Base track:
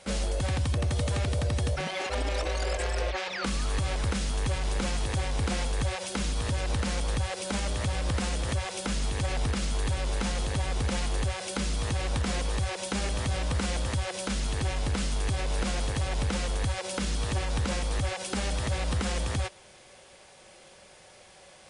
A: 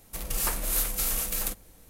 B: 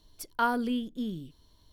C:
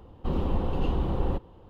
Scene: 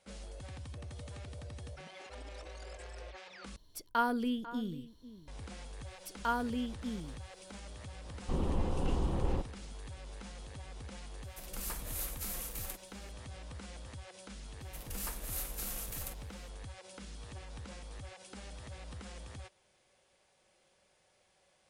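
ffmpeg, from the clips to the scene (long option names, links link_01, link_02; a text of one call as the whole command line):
ffmpeg -i bed.wav -i cue0.wav -i cue1.wav -i cue2.wav -filter_complex "[2:a]asplit=2[link_01][link_02];[1:a]asplit=2[link_03][link_04];[0:a]volume=-18dB[link_05];[link_01]asplit=2[link_06][link_07];[link_07]adelay=495.6,volume=-15dB,highshelf=frequency=4000:gain=-11.2[link_08];[link_06][link_08]amix=inputs=2:normalize=0[link_09];[link_05]asplit=2[link_10][link_11];[link_10]atrim=end=3.564[link_12];[link_09]atrim=end=1.72,asetpts=PTS-STARTPTS,volume=-3.5dB[link_13];[link_11]atrim=start=5.276[link_14];[link_02]atrim=end=1.72,asetpts=PTS-STARTPTS,volume=-6dB,afade=type=in:duration=0.004:curve=hsin,afade=type=out:start_time=1.716:duration=0.004:curve=hsin,adelay=5860[link_15];[3:a]atrim=end=1.69,asetpts=PTS-STARTPTS,volume=-5.5dB,afade=type=in:duration=0.004:curve=hsin,afade=type=out:start_time=1.686:duration=0.004:curve=hsin,adelay=8040[link_16];[link_03]atrim=end=1.89,asetpts=PTS-STARTPTS,volume=-12.5dB,afade=type=in:duration=0.004:curve=hsin,afade=type=out:start_time=1.886:duration=0.004:curve=hsin,adelay=11230[link_17];[link_04]atrim=end=1.89,asetpts=PTS-STARTPTS,volume=-12.5dB,afade=type=in:duration=0.004:curve=hsin,afade=type=out:start_time=1.886:duration=0.004:curve=hsin,adelay=643860S[link_18];[link_12][link_13]acrossfade=duration=0.004:curve1=hsin:curve2=hsin[link_19];[link_19][link_14]acrossfade=duration=0.004:curve1=hsin:curve2=hsin[link_20];[link_20][link_15][link_16][link_17][link_18]amix=inputs=5:normalize=0" out.wav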